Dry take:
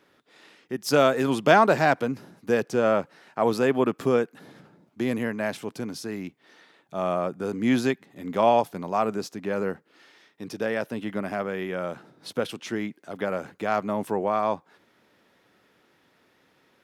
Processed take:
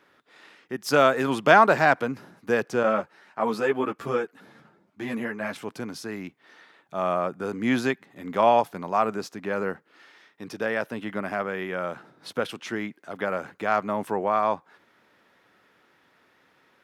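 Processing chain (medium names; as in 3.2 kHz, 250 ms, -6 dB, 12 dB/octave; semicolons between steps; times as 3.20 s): peaking EQ 1.4 kHz +6.5 dB 2 oct; 2.83–5.56 s: three-phase chorus; trim -2.5 dB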